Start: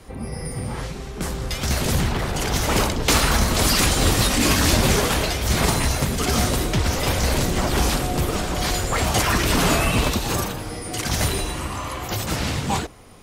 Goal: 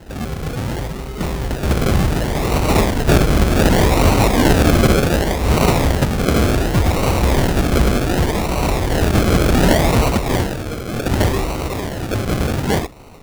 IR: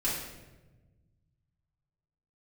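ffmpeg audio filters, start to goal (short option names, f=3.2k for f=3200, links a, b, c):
-af "acrusher=samples=37:mix=1:aa=0.000001:lfo=1:lforange=22.2:lforate=0.67,volume=5.5dB"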